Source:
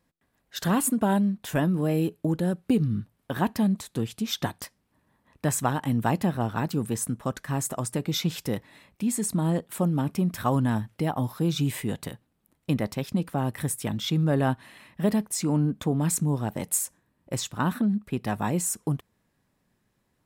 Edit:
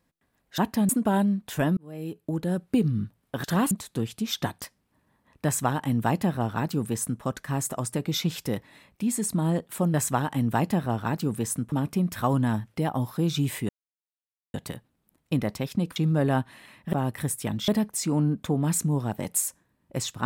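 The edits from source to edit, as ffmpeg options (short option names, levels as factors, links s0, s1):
-filter_complex "[0:a]asplit=12[s0][s1][s2][s3][s4][s5][s6][s7][s8][s9][s10][s11];[s0]atrim=end=0.582[s12];[s1]atrim=start=3.398:end=3.712[s13];[s2]atrim=start=0.848:end=1.73,asetpts=PTS-STARTPTS,afade=t=out:st=0.878:d=0.004:c=hsin[s14];[s3]atrim=start=1.73:end=3.402,asetpts=PTS-STARTPTS,afade=t=in:d=0.84[s15];[s4]atrim=start=0.578:end=0.852[s16];[s5]atrim=start=3.708:end=9.942[s17];[s6]atrim=start=5.448:end=7.232[s18];[s7]atrim=start=9.938:end=11.91,asetpts=PTS-STARTPTS,afade=t=out:st=1.968:d=0.004:c=hsin,apad=pad_dur=0.85[s19];[s8]atrim=start=11.91:end=13.332,asetpts=PTS-STARTPTS,afade=t=in:d=0.004:c=hsin[s20];[s9]atrim=start=14.078:end=15.052[s21];[s10]atrim=start=13.328:end=14.082[s22];[s11]atrim=start=15.048[s23];[s12][s13]acrossfade=d=0.004:c1=hsin:c2=hsin[s24];[s14][s15]concat=n=2:v=0:a=1[s25];[s24][s25]acrossfade=d=0.004:c1=hsin:c2=hsin[s26];[s26][s16]acrossfade=d=0.004:c1=hsin:c2=hsin[s27];[s27][s17]acrossfade=d=0.004:c1=hsin:c2=hsin[s28];[s28][s18]acrossfade=d=0.004:c1=hsin:c2=hsin[s29];[s19][s20]concat=n=2:v=0:a=1[s30];[s29][s30]acrossfade=d=0.004:c1=hsin:c2=hsin[s31];[s31][s21]acrossfade=d=0.004:c1=hsin:c2=hsin[s32];[s32][s22]acrossfade=d=0.004:c1=hsin:c2=hsin[s33];[s33][s23]acrossfade=d=0.004:c1=hsin:c2=hsin"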